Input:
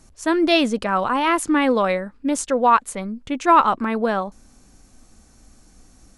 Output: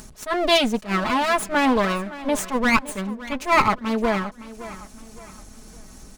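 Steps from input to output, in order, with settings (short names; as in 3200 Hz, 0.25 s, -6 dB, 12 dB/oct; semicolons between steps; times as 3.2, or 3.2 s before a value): minimum comb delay 4.7 ms; upward compressor, threshold -33 dBFS; on a send: feedback echo 0.566 s, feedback 40%, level -16.5 dB; on the sum: attack slew limiter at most 230 dB/s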